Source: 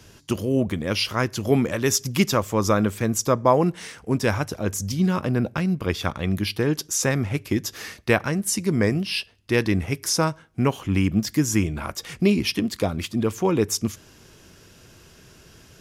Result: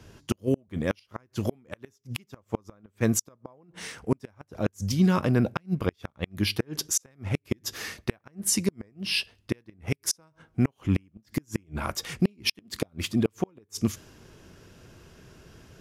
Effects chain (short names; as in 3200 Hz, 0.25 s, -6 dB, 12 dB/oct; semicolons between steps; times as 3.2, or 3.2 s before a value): flipped gate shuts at -12 dBFS, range -37 dB; mismatched tape noise reduction decoder only